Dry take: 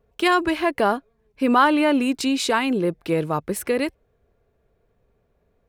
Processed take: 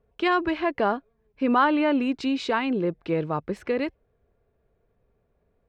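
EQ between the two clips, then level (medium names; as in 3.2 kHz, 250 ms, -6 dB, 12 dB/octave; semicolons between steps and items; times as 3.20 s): distance through air 180 m; -3.0 dB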